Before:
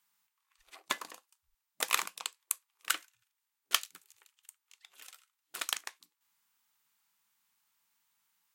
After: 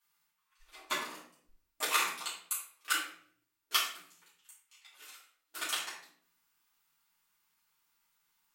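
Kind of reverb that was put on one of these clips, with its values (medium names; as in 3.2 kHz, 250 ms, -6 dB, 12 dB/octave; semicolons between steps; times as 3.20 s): simulated room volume 82 m³, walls mixed, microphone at 2.9 m; trim -10 dB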